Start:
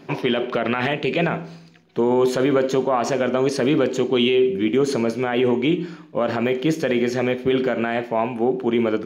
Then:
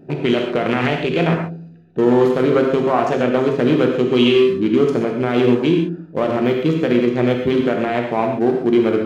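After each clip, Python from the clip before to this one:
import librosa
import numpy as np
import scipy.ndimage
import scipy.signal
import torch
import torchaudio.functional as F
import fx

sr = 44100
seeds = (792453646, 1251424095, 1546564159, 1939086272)

y = fx.wiener(x, sr, points=41)
y = fx.rev_gated(y, sr, seeds[0], gate_ms=160, shape='flat', drr_db=1.5)
y = y * librosa.db_to_amplitude(3.5)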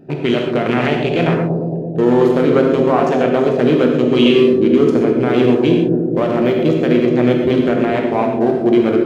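y = fx.echo_bbd(x, sr, ms=223, stages=1024, feedback_pct=71, wet_db=-5.0)
y = y * librosa.db_to_amplitude(1.0)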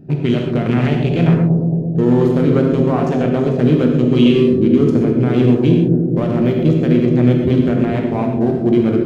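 y = fx.bass_treble(x, sr, bass_db=15, treble_db=3)
y = y * librosa.db_to_amplitude(-6.0)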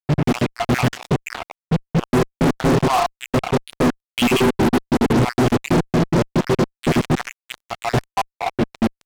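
y = fx.spec_dropout(x, sr, seeds[1], share_pct=71)
y = fx.fuzz(y, sr, gain_db=29.0, gate_db=-32.0)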